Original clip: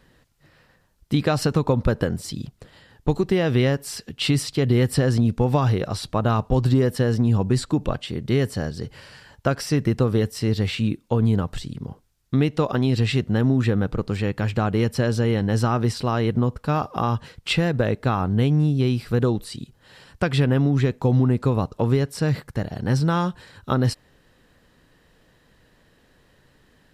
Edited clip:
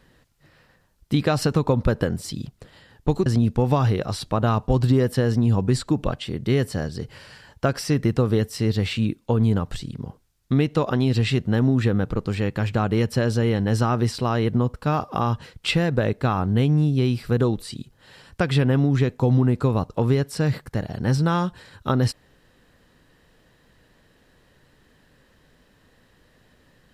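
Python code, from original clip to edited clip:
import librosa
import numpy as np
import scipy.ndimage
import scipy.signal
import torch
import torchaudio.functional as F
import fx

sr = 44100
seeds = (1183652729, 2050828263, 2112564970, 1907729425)

y = fx.edit(x, sr, fx.cut(start_s=3.26, length_s=1.82), tone=tone)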